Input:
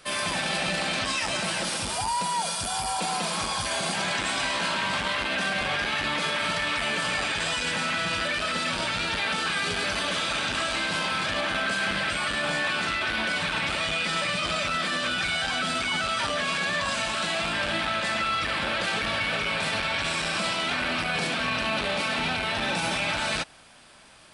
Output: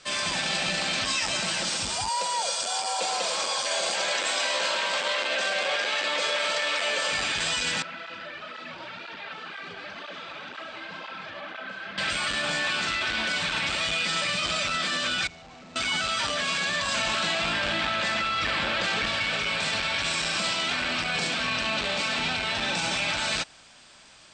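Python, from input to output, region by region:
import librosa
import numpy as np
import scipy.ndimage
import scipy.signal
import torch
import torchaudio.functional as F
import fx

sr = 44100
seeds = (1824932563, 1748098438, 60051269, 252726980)

y = fx.chain(x, sr, fx.highpass(hz=390.0, slope=12),
    fx.peak_eq(hz=530.0, db=11.5, octaves=0.45), at=(2.09, 7.12))
y = fx.chain(y, sr, fx.highpass(hz=410.0, slope=6),
    fx.spacing_loss(db_at_10k=37),
    fx.flanger_cancel(hz=2.0, depth_ms=5.0), at=(7.82, 11.98))
y = fx.chain(y, sr, fx.moving_average(points=27),
    fx.tube_stage(drive_db=43.0, bias=0.75), at=(15.27, 15.76))
y = fx.chain(y, sr, fx.lowpass(hz=4000.0, slope=6),
    fx.env_flatten(amount_pct=100), at=(16.94, 19.06))
y = scipy.signal.sosfilt(scipy.signal.butter(12, 8300.0, 'lowpass', fs=sr, output='sos'), y)
y = fx.high_shelf(y, sr, hz=3200.0, db=9.0)
y = y * librosa.db_to_amplitude(-3.0)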